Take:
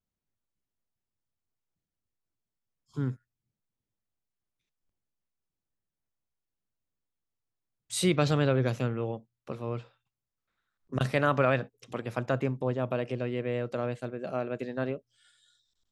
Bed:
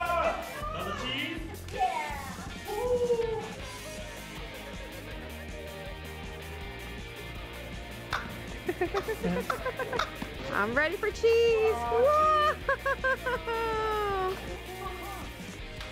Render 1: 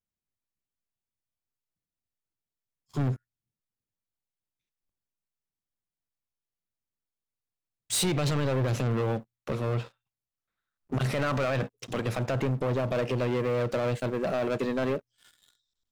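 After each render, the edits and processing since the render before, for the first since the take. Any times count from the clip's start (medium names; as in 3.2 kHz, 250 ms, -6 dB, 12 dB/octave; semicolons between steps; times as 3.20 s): peak limiter -22 dBFS, peak gain reduction 10.5 dB; waveshaping leveller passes 3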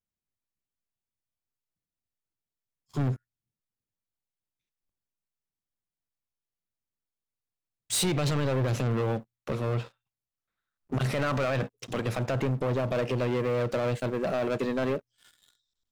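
no audible change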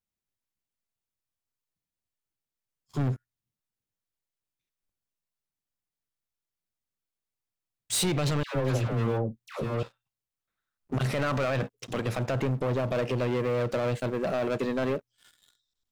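8.43–9.83 s: phase dispersion lows, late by 123 ms, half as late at 910 Hz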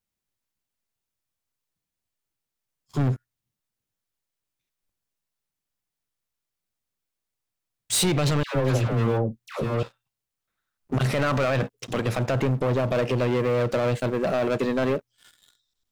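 trim +4.5 dB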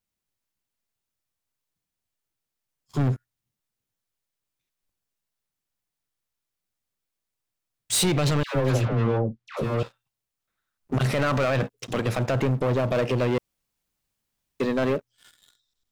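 8.85–9.57 s: distance through air 120 m; 13.38–14.60 s: room tone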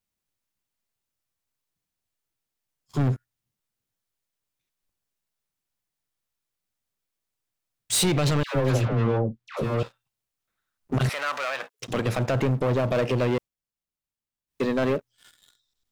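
11.09–11.80 s: high-pass 940 Hz; 13.34–14.62 s: dip -14 dB, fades 0.15 s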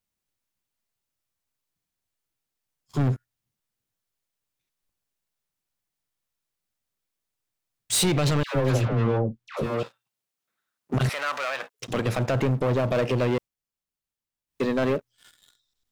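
9.66–10.94 s: high-pass 170 Hz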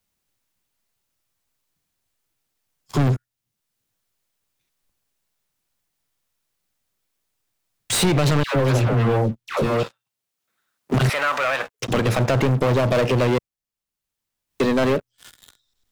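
waveshaping leveller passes 2; three bands compressed up and down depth 40%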